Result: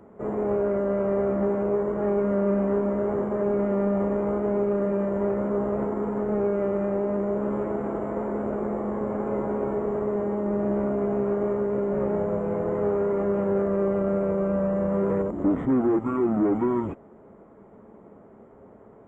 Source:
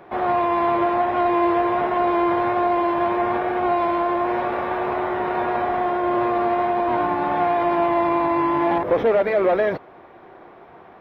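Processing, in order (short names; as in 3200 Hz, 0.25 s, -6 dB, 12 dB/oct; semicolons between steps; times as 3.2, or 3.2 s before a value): speed mistake 78 rpm record played at 45 rpm; gain -4.5 dB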